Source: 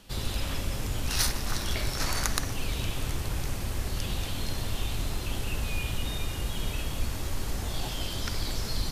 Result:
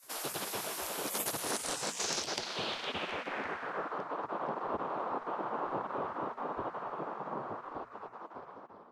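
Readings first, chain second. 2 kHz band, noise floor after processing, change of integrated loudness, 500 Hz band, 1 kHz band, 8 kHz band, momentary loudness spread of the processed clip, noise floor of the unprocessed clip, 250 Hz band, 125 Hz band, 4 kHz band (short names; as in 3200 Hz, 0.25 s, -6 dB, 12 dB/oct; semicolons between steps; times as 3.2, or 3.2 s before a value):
-4.0 dB, -53 dBFS, -4.5 dB, +2.0 dB, +4.5 dB, -4.0 dB, 11 LU, -34 dBFS, -5.5 dB, -21.0 dB, -6.5 dB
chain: ending faded out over 2.84 s; spectral gate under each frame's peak -25 dB weak; notches 60/120/180/240 Hz; in parallel at +2 dB: compressor, threshold -50 dBFS, peak gain reduction 18 dB; on the sum: EQ curve 440 Hz 0 dB, 1400 Hz -6 dB, 2000 Hz -11 dB; reverse; upward compressor, threshold -57 dBFS; reverse; low-pass sweep 12000 Hz -> 1100 Hz, 1.34–4.08; gain +7 dB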